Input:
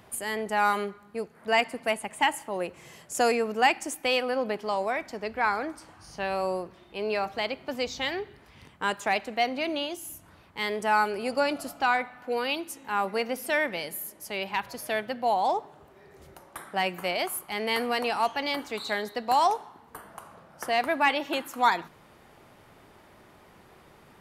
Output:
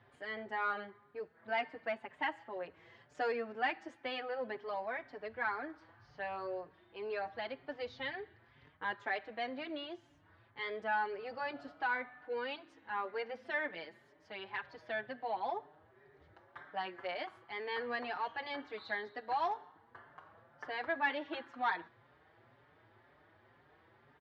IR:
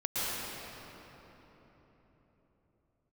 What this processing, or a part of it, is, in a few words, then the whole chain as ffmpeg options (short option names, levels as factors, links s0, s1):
barber-pole flanger into a guitar amplifier: -filter_complex "[0:a]asplit=2[s0][s1];[s1]adelay=5.4,afreqshift=2[s2];[s0][s2]amix=inputs=2:normalize=1,asoftclip=type=tanh:threshold=0.141,highpass=79,equalizer=f=110:t=q:w=4:g=8,equalizer=f=190:t=q:w=4:g=-10,equalizer=f=1700:t=q:w=4:g=7,equalizer=f=2600:t=q:w=4:g=-5,lowpass=f=3800:w=0.5412,lowpass=f=3800:w=1.3066,volume=0.398"